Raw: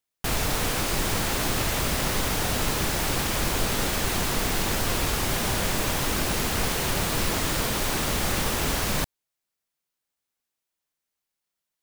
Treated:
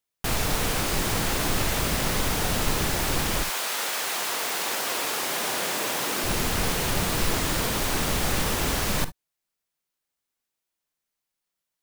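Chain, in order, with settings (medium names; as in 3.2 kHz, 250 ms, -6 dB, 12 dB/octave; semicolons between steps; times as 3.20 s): 3.42–6.23 s: high-pass 810 Hz -> 280 Hz 12 dB/octave; reverberation, pre-delay 44 ms, DRR 13.5 dB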